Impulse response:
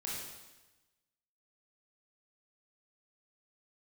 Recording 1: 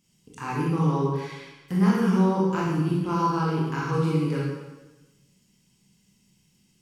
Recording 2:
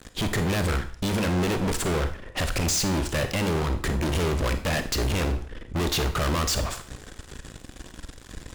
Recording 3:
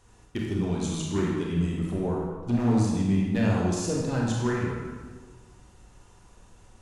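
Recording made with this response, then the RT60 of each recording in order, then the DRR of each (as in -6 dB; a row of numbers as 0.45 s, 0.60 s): 1; 1.1 s, 0.45 s, 1.4 s; -5.5 dB, 8.0 dB, -3.5 dB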